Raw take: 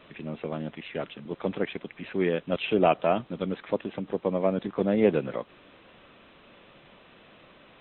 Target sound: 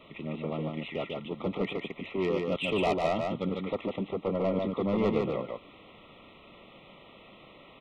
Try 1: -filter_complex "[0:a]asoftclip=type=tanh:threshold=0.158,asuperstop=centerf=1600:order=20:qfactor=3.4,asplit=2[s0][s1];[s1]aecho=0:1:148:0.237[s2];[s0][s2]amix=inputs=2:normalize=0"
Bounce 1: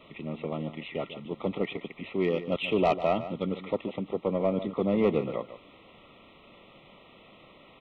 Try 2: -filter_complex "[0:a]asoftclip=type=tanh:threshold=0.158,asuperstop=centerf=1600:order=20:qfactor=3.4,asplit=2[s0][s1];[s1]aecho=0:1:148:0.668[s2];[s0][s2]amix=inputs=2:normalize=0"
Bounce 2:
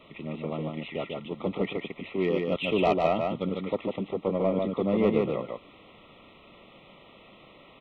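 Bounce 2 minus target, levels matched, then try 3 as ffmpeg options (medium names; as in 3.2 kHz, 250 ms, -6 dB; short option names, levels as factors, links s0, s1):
saturation: distortion -7 dB
-filter_complex "[0:a]asoftclip=type=tanh:threshold=0.0708,asuperstop=centerf=1600:order=20:qfactor=3.4,asplit=2[s0][s1];[s1]aecho=0:1:148:0.668[s2];[s0][s2]amix=inputs=2:normalize=0"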